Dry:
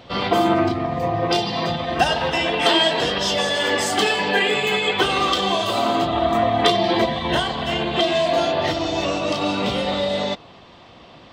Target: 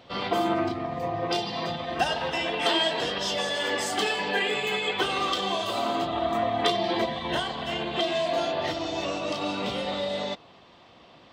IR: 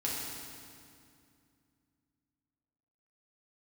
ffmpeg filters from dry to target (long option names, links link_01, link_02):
-af "lowshelf=frequency=130:gain=-6.5,volume=-7dB"